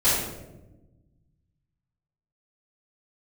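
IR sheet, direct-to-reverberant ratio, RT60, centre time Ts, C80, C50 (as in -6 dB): -14.0 dB, 1.1 s, 72 ms, 3.0 dB, -0.5 dB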